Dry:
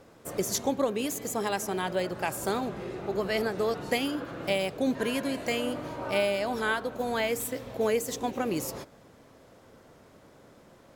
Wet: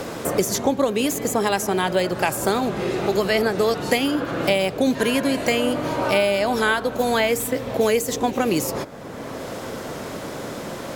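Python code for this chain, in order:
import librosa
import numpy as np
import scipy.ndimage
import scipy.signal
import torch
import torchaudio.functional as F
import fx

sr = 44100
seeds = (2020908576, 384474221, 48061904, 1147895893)

y = fx.band_squash(x, sr, depth_pct=70)
y = F.gain(torch.from_numpy(y), 8.5).numpy()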